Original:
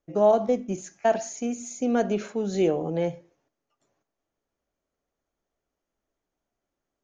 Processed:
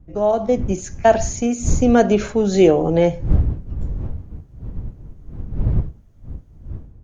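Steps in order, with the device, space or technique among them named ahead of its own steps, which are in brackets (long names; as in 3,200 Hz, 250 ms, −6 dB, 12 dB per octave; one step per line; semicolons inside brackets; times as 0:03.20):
smartphone video outdoors (wind on the microphone 84 Hz −35 dBFS; automatic gain control gain up to 13 dB; AAC 96 kbit/s 48,000 Hz)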